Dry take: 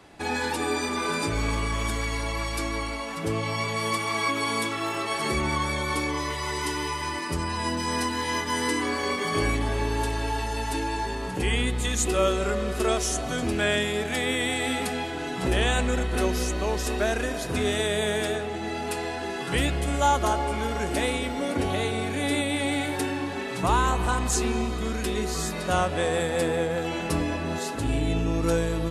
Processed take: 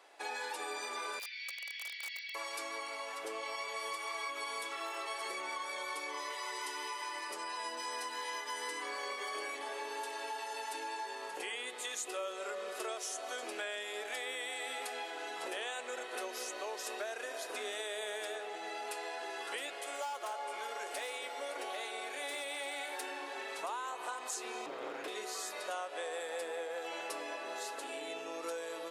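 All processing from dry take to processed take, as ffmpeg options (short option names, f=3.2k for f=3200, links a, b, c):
-filter_complex "[0:a]asettb=1/sr,asplit=3[a][b][c];[a]atrim=end=1.194[d];[b]atrim=start=1.19:end=2.35,asetpts=PTS-STARTPTS,afade=t=in:d=0.004:c=qsin,afade=t=out:st=1.156:d=0.004:c=qsin,asuperpass=centerf=3100:order=12:qfactor=0.95,aeval=exprs='(mod(22.4*val(0)+1,2)-1)/22.4':c=same,aeval=exprs='val(0)+0.00158*(sin(2*PI*50*n/s)+sin(2*PI*2*50*n/s)/2+sin(2*PI*3*50*n/s)/3+sin(2*PI*4*50*n/s)/4+sin(2*PI*5*50*n/s)/5)':c=same[e];[c]atrim=start=2.346[f];[d][e]acrossfade=d=0.004:c1=hsin:c2=qsin[g];[g][f]acrossfade=d=0.004:c1=qsin:c2=hsin,asettb=1/sr,asplit=3[h][i][j];[h]atrim=end=19.744[k];[i]atrim=start=19.74:end=23.03,asetpts=PTS-STARTPTS,afade=t=in:d=0.004:c=qsin,afade=t=out:st=3.286:d=0.004:c=qsin,highpass=f=290:p=1,bandreject=f=50:t=h:w=6,bandreject=f=100:t=h:w=6,bandreject=f=150:t=h:w=6,bandreject=f=200:t=h:w=6,bandreject=f=250:t=h:w=6,bandreject=f=300:t=h:w=6,bandreject=f=350:t=h:w=6,bandreject=f=400:t=h:w=6,bandreject=f=450:t=h:w=6,volume=22dB,asoftclip=hard,volume=-22dB[l];[j]atrim=start=23.026[m];[k][l]acrossfade=d=0.004:c1=hsin:c2=qsin[n];[n][m]acrossfade=d=0.004:c1=qsin:c2=hsin,asettb=1/sr,asplit=3[o][p][q];[o]atrim=end=24.664[r];[p]atrim=start=24.66:end=25.08,asetpts=PTS-STARTPTS,afade=t=in:d=0.004:c=qsin,afade=t=out:st=0.416:d=0.004:c=qsin,bass=f=250:g=14,treble=f=4k:g=-15,aeval=exprs='abs(val(0))':c=same[s];[q]atrim=start=25.076[t];[r][s]acrossfade=d=0.004:c1=hsin:c2=qsin[u];[u][t]acrossfade=d=0.004:c1=qsin:c2=hsin,highpass=f=460:w=0.5412,highpass=f=460:w=1.3066,acompressor=threshold=-30dB:ratio=5,volume=-7dB"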